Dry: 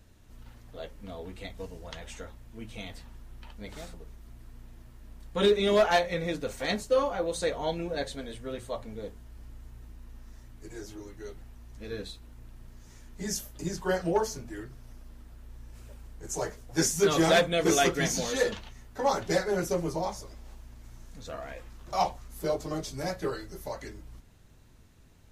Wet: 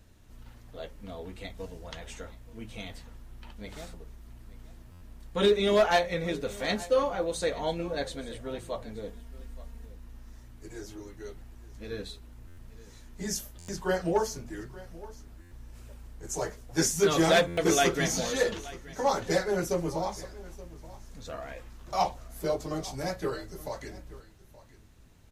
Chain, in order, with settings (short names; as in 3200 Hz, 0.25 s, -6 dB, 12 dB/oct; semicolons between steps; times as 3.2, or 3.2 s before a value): 9.08–9.86 comb 4.3 ms, depth 76%; echo 0.875 s -19 dB; stuck buffer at 4.91/12.47/13.58/15.41/17.47, samples 512, times 8